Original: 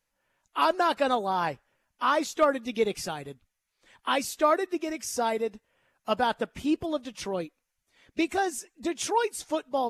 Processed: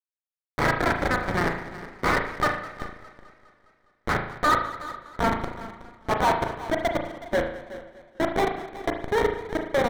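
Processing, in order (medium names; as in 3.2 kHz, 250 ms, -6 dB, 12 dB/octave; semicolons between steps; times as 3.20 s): comb filter that takes the minimum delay 7.3 ms; hum notches 60/120/180/240/300/360/420/480 Hz; in parallel at +0.5 dB: peak limiter -21 dBFS, peak gain reduction 8.5 dB; on the sum: high-pass sweep 1.6 kHz -> 470 Hz, 3.97–7.95 s; Schmitt trigger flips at -16.5 dBFS; resonant high shelf 3 kHz -11 dB, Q 1.5; overdrive pedal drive 27 dB, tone 3 kHz, clips at -14 dBFS; delay 370 ms -16 dB; reverberation RT60 0.65 s, pre-delay 36 ms, DRR 4 dB; modulated delay 205 ms, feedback 61%, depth 109 cents, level -18 dB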